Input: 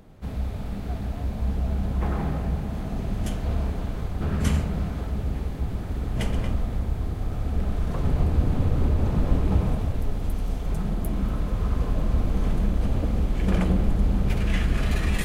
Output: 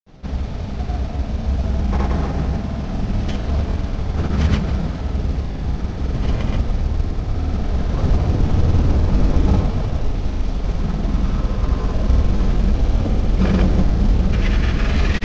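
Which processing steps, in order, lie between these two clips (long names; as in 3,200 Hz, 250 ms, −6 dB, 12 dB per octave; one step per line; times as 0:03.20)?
variable-slope delta modulation 32 kbit/s
granular cloud, pitch spread up and down by 0 semitones
level +7.5 dB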